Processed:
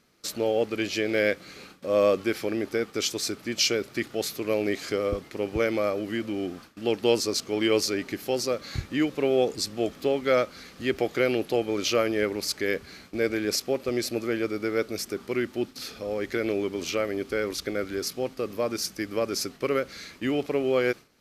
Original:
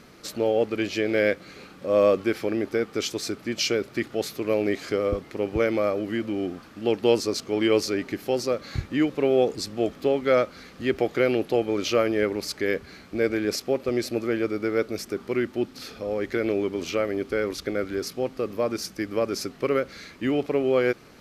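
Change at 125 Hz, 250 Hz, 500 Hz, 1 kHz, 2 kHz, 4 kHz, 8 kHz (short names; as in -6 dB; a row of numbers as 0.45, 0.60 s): -2.5, -2.5, -2.5, -1.5, 0.0, +2.5, +4.0 dB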